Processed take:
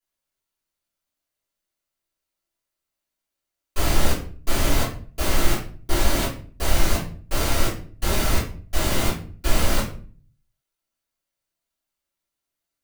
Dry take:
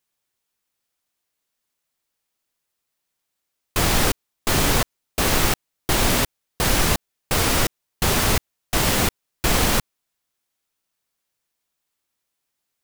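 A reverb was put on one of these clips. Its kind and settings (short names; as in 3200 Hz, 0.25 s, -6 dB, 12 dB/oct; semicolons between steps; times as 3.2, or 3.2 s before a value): shoebox room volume 35 m³, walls mixed, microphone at 2.4 m; gain -17 dB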